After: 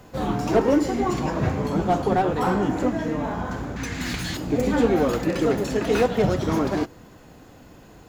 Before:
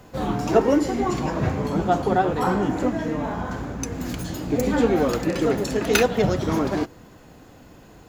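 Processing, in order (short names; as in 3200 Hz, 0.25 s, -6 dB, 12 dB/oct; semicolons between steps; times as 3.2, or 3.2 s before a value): 3.76–4.37 ten-band EQ 500 Hz -6 dB, 2000 Hz +11 dB, 4000 Hz +10 dB, 8000 Hz +6 dB; slew limiter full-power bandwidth 120 Hz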